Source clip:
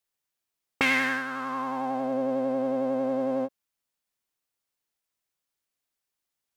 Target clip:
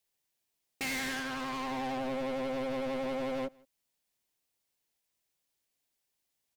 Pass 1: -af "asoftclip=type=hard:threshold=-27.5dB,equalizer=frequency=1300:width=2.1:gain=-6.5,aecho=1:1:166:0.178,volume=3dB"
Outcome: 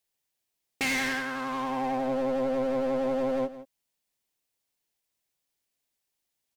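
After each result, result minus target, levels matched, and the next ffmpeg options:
echo-to-direct +12 dB; hard clipping: distortion −4 dB
-af "asoftclip=type=hard:threshold=-27.5dB,equalizer=frequency=1300:width=2.1:gain=-6.5,aecho=1:1:166:0.0447,volume=3dB"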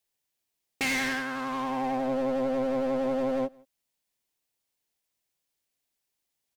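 hard clipping: distortion −4 dB
-af "asoftclip=type=hard:threshold=-35.5dB,equalizer=frequency=1300:width=2.1:gain=-6.5,aecho=1:1:166:0.0447,volume=3dB"

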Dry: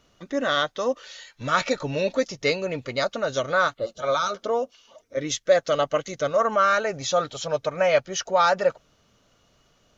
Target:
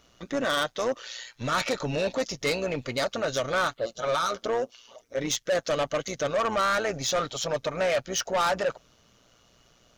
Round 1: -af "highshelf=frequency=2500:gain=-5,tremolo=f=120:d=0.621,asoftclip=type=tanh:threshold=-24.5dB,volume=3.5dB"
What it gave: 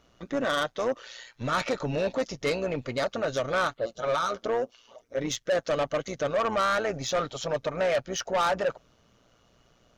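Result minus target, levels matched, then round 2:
4,000 Hz band −3.0 dB
-af "highshelf=frequency=2500:gain=3.5,tremolo=f=120:d=0.621,asoftclip=type=tanh:threshold=-24.5dB,volume=3.5dB"

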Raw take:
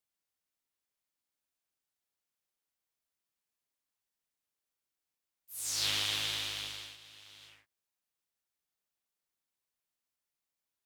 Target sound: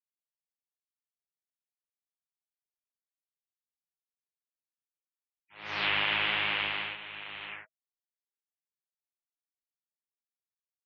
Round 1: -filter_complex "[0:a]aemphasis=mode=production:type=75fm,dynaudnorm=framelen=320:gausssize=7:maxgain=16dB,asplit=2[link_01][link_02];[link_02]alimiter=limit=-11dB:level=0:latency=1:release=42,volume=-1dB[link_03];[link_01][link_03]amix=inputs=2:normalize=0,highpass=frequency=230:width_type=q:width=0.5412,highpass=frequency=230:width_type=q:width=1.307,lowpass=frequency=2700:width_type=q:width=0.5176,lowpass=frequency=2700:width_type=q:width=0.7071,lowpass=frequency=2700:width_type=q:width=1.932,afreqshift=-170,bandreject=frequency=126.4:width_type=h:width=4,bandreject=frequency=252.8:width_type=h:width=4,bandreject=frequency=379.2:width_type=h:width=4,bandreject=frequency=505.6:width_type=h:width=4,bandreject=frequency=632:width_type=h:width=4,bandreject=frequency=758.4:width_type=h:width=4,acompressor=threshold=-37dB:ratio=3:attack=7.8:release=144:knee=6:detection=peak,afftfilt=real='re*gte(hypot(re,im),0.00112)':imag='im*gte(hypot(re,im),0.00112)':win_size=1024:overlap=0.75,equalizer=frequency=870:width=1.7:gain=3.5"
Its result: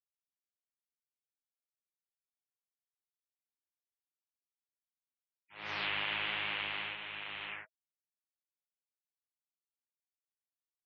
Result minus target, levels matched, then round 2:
downward compressor: peak gain reduction +7.5 dB
-filter_complex "[0:a]aemphasis=mode=production:type=75fm,dynaudnorm=framelen=320:gausssize=7:maxgain=16dB,asplit=2[link_01][link_02];[link_02]alimiter=limit=-11dB:level=0:latency=1:release=42,volume=-1dB[link_03];[link_01][link_03]amix=inputs=2:normalize=0,highpass=frequency=230:width_type=q:width=0.5412,highpass=frequency=230:width_type=q:width=1.307,lowpass=frequency=2700:width_type=q:width=0.5176,lowpass=frequency=2700:width_type=q:width=0.7071,lowpass=frequency=2700:width_type=q:width=1.932,afreqshift=-170,bandreject=frequency=126.4:width_type=h:width=4,bandreject=frequency=252.8:width_type=h:width=4,bandreject=frequency=379.2:width_type=h:width=4,bandreject=frequency=505.6:width_type=h:width=4,bandreject=frequency=632:width_type=h:width=4,bandreject=frequency=758.4:width_type=h:width=4,acompressor=threshold=-26dB:ratio=3:attack=7.8:release=144:knee=6:detection=peak,afftfilt=real='re*gte(hypot(re,im),0.00112)':imag='im*gte(hypot(re,im),0.00112)':win_size=1024:overlap=0.75,equalizer=frequency=870:width=1.7:gain=3.5"

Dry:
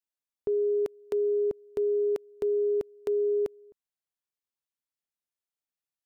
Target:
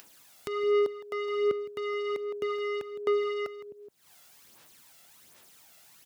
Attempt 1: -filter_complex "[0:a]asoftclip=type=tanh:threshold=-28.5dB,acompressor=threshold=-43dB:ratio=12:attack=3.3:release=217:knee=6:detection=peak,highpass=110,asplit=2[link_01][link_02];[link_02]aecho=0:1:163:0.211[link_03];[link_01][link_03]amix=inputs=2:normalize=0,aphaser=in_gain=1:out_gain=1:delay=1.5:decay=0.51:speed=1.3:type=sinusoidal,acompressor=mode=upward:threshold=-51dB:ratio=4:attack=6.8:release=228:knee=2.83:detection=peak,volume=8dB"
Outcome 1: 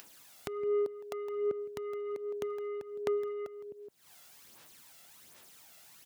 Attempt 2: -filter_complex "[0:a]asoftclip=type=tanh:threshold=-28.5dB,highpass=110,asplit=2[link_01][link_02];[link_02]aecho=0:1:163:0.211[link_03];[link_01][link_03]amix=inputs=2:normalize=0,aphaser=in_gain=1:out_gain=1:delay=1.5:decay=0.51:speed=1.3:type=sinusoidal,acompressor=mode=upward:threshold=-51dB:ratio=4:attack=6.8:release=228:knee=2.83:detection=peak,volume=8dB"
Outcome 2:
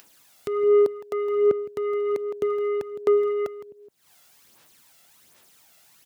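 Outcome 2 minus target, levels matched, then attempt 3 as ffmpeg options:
soft clipping: distortion −6 dB
-filter_complex "[0:a]asoftclip=type=tanh:threshold=-37dB,highpass=110,asplit=2[link_01][link_02];[link_02]aecho=0:1:163:0.211[link_03];[link_01][link_03]amix=inputs=2:normalize=0,aphaser=in_gain=1:out_gain=1:delay=1.5:decay=0.51:speed=1.3:type=sinusoidal,acompressor=mode=upward:threshold=-51dB:ratio=4:attack=6.8:release=228:knee=2.83:detection=peak,volume=8dB"

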